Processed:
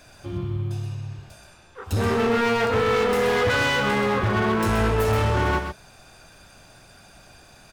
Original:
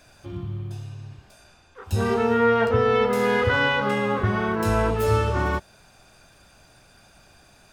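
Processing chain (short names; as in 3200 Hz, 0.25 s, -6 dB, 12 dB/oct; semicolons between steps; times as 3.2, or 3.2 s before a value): hard clip -23 dBFS, distortion -8 dB; echo 0.128 s -7 dB; gain +3.5 dB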